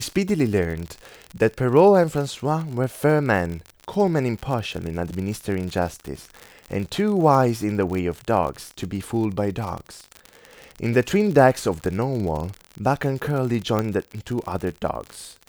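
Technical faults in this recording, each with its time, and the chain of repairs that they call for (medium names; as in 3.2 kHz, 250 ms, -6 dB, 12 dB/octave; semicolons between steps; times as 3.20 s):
crackle 53 per s -27 dBFS
13.79 s: pop -10 dBFS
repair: de-click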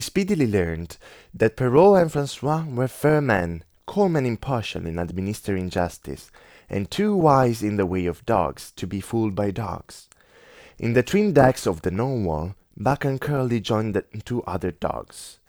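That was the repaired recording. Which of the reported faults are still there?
nothing left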